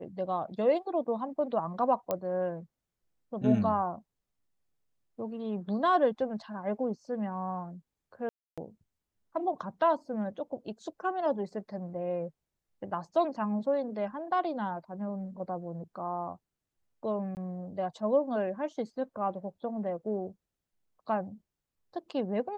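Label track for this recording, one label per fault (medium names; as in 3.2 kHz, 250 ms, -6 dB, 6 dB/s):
2.110000	2.110000	pop -17 dBFS
8.290000	8.580000	dropout 286 ms
17.350000	17.370000	dropout 19 ms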